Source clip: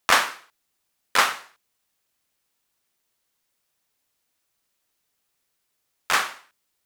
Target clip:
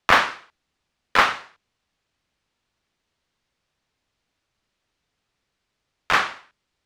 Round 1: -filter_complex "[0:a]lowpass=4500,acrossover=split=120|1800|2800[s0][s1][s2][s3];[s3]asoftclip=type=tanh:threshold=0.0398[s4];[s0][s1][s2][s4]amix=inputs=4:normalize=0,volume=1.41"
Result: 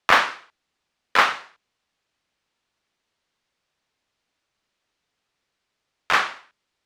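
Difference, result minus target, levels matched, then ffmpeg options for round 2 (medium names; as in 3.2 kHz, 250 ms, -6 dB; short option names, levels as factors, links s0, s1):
250 Hz band -3.0 dB
-filter_complex "[0:a]lowpass=4500,lowshelf=f=180:g=10,acrossover=split=120|1800|2800[s0][s1][s2][s3];[s3]asoftclip=type=tanh:threshold=0.0398[s4];[s0][s1][s2][s4]amix=inputs=4:normalize=0,volume=1.41"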